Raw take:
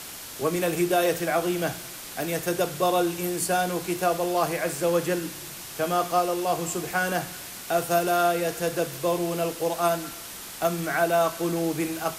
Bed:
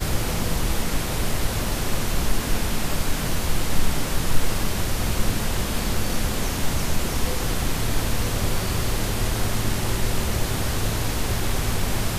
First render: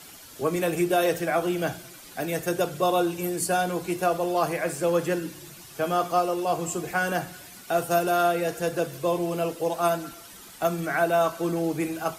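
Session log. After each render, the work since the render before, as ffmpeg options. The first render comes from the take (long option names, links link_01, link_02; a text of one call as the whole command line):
ffmpeg -i in.wav -af "afftdn=noise_reduction=10:noise_floor=-40" out.wav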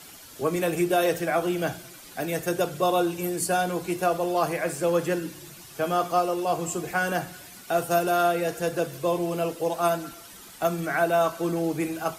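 ffmpeg -i in.wav -af anull out.wav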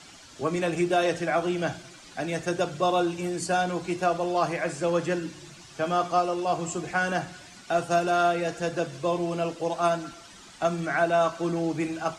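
ffmpeg -i in.wav -af "lowpass=frequency=7500:width=0.5412,lowpass=frequency=7500:width=1.3066,equalizer=frequency=450:width=3.9:gain=-5" out.wav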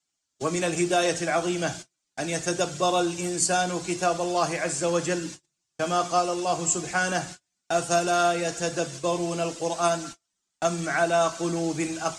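ffmpeg -i in.wav -af "agate=range=-39dB:threshold=-39dB:ratio=16:detection=peak,equalizer=frequency=7500:width_type=o:width=1.4:gain=12.5" out.wav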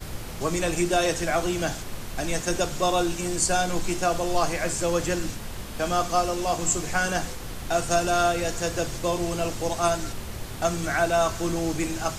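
ffmpeg -i in.wav -i bed.wav -filter_complex "[1:a]volume=-11.5dB[link_01];[0:a][link_01]amix=inputs=2:normalize=0" out.wav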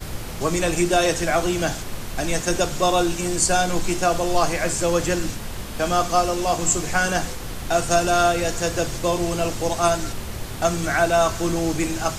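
ffmpeg -i in.wav -af "volume=4dB" out.wav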